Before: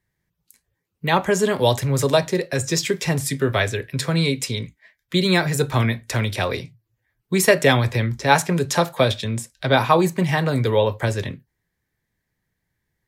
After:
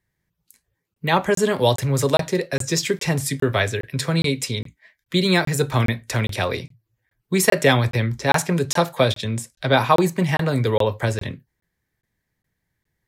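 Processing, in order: crackling interface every 0.41 s, samples 1024, zero, from 0.94 s

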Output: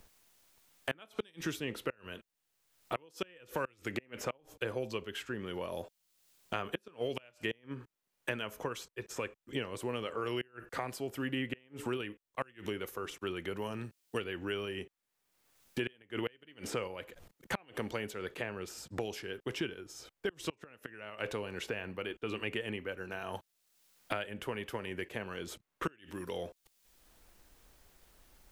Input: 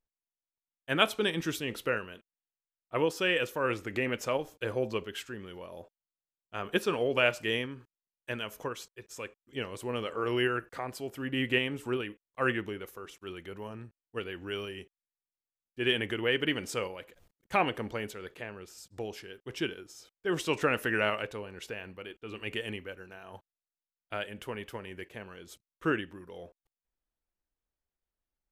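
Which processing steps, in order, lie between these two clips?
inverted gate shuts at -19 dBFS, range -31 dB; three bands compressed up and down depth 100%; trim -1.5 dB

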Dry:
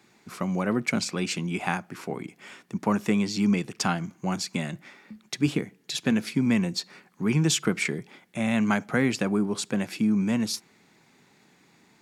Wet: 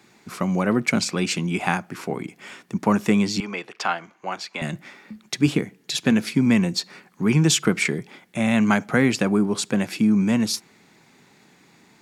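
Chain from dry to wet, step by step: 3.40–4.62 s: three-band isolator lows -23 dB, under 430 Hz, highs -16 dB, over 4.1 kHz; trim +5 dB

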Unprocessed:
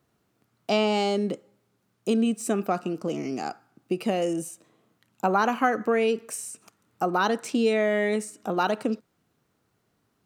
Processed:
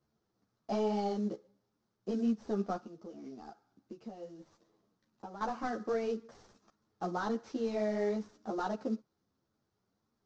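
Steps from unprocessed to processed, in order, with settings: CVSD coder 32 kbps; peaking EQ 2.6 kHz -12.5 dB 1.2 oct; 2.76–5.41 s: compression 4:1, threshold -37 dBFS, peak gain reduction 13.5 dB; three-phase chorus; trim -5.5 dB

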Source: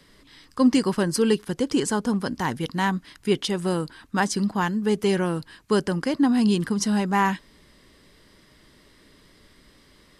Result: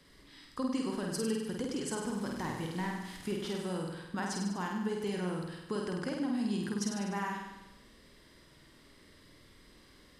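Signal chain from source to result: 1.97–3.59 s: one-bit delta coder 64 kbps, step -38.5 dBFS; compression 4:1, threshold -28 dBFS, peak gain reduction 12.5 dB; on a send: flutter echo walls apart 8.5 m, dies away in 0.98 s; on the sum: trim -7 dB

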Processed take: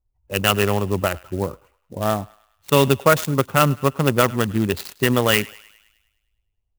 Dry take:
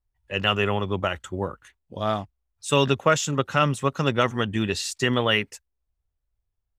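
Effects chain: local Wiener filter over 25 samples; on a send: thinning echo 103 ms, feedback 59%, high-pass 920 Hz, level -20 dB; on the sum: sampling jitter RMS 0.035 ms; trim +5 dB

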